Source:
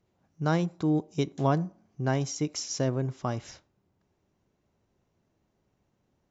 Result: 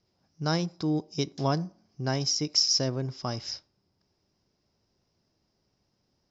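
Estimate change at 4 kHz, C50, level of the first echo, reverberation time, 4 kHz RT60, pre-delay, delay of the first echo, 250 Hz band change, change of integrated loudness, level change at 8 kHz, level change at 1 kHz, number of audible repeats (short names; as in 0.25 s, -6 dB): +13.0 dB, none, none, none, none, none, none, -2.0 dB, +1.5 dB, n/a, -1.5 dB, none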